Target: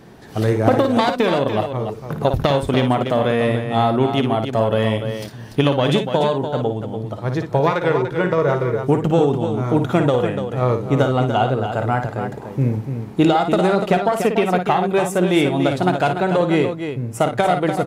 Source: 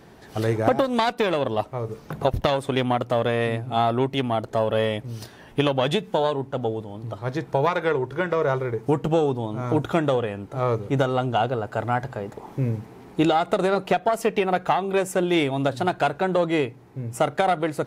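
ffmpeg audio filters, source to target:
ffmpeg -i in.wav -filter_complex "[0:a]equalizer=frequency=180:width_type=o:width=1.7:gain=4.5,asplit=2[link_01][link_02];[link_02]aecho=0:1:55.39|291.5:0.398|0.398[link_03];[link_01][link_03]amix=inputs=2:normalize=0,volume=2.5dB" out.wav

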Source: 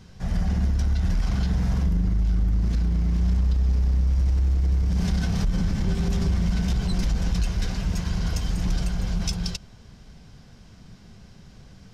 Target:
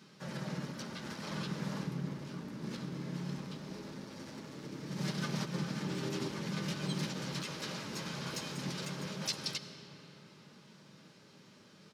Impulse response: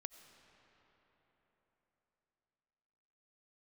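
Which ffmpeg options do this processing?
-filter_complex "[0:a]highpass=frequency=220:width=0.5412,highpass=frequency=220:width=1.3066,flanger=delay=4.6:depth=9.3:regen=-15:speed=0.19:shape=triangular,asplit=3[link_01][link_02][link_03];[link_02]asetrate=35002,aresample=44100,atempo=1.25992,volume=-1dB[link_04];[link_03]asetrate=88200,aresample=44100,atempo=0.5,volume=-18dB[link_05];[link_01][link_04][link_05]amix=inputs=3:normalize=0,asuperstop=centerf=720:order=4:qfactor=6.1[link_06];[1:a]atrim=start_sample=2205[link_07];[link_06][link_07]afir=irnorm=-1:irlink=0,volume=2dB"

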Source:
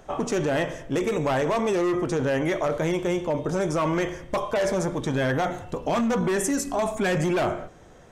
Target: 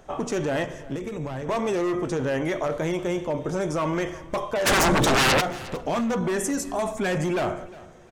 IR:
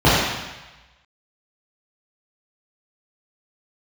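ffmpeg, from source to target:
-filter_complex "[0:a]asplit=3[link_01][link_02][link_03];[link_01]afade=type=out:start_time=4.65:duration=0.02[link_04];[link_02]aeval=exprs='0.188*sin(PI/2*5.62*val(0)/0.188)':channel_layout=same,afade=type=in:start_time=4.65:duration=0.02,afade=type=out:start_time=5.4:duration=0.02[link_05];[link_03]afade=type=in:start_time=5.4:duration=0.02[link_06];[link_04][link_05][link_06]amix=inputs=3:normalize=0,aecho=1:1:356|712:0.106|0.0297,asettb=1/sr,asplit=3[link_07][link_08][link_09];[link_07]atrim=end=0.644[link_10];[link_08]atrim=start=0.64:end=1.49,asetpts=PTS-STARTPTS,afade=type=in:duration=0.004:curve=qsin,afade=type=out:start_time=0.846:duration=0.004:curve=qsin,acrossover=split=230[link_11][link_12];[link_12]acompressor=threshold=-31dB:ratio=10[link_13];[link_11][link_13]amix=inputs=2:normalize=0[link_14];[link_09]atrim=start=1.486[link_15];[link_10][link_14]acrossfade=duration=0.004:curve1=hsin:curve2=qsin[link_16];[link_16][link_15]acrossfade=duration=0.004:curve1=qsin:curve2=hsin,volume=-1.5dB"

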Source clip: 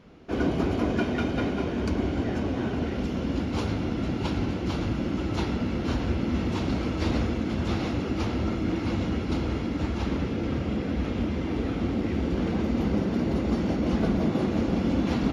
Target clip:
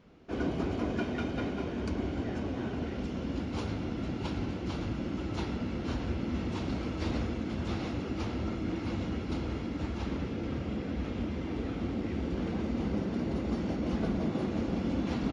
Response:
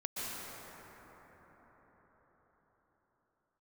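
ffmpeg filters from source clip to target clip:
-af "aresample=22050,aresample=44100,volume=-6.5dB"

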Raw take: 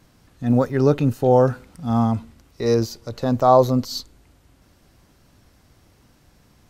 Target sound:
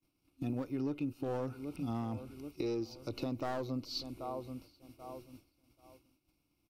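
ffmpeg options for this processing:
ffmpeg -i in.wav -filter_complex "[0:a]acrossover=split=5600[link_01][link_02];[link_02]acompressor=threshold=-55dB:ratio=4:attack=1:release=60[link_03];[link_01][link_03]amix=inputs=2:normalize=0,asplit=2[link_04][link_05];[link_05]adelay=783,lowpass=frequency=4400:poles=1,volume=-20dB,asplit=2[link_06][link_07];[link_07]adelay=783,lowpass=frequency=4400:poles=1,volume=0.39,asplit=2[link_08][link_09];[link_09]adelay=783,lowpass=frequency=4400:poles=1,volume=0.39[link_10];[link_06][link_08][link_10]amix=inputs=3:normalize=0[link_11];[link_04][link_11]amix=inputs=2:normalize=0,agate=range=-33dB:threshold=-42dB:ratio=3:detection=peak,superequalizer=6b=3.55:11b=0.251:12b=2.24:15b=0.447,acrossover=split=450|3200[link_12][link_13][link_14];[link_13]aeval=exprs='clip(val(0),-1,0.0631)':channel_layout=same[link_15];[link_12][link_15][link_14]amix=inputs=3:normalize=0,acompressor=threshold=-28dB:ratio=6,aemphasis=mode=production:type=cd,volume=-6.5dB" out.wav

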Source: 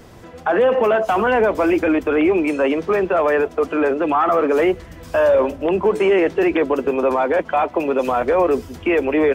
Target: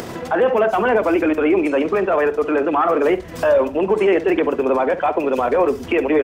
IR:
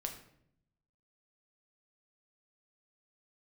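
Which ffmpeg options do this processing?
-filter_complex "[0:a]acrossover=split=120[link_01][link_02];[link_01]alimiter=level_in=13dB:limit=-24dB:level=0:latency=1:release=226,volume=-13dB[link_03];[link_02]acompressor=mode=upward:threshold=-18dB:ratio=2.5[link_04];[link_03][link_04]amix=inputs=2:normalize=0,asplit=2[link_05][link_06];[link_06]adelay=84,lowpass=frequency=2200:poles=1,volume=-12dB,asplit=2[link_07][link_08];[link_08]adelay=84,lowpass=frequency=2200:poles=1,volume=0.2,asplit=2[link_09][link_10];[link_10]adelay=84,lowpass=frequency=2200:poles=1,volume=0.2[link_11];[link_05][link_07][link_09][link_11]amix=inputs=4:normalize=0,atempo=1.5"

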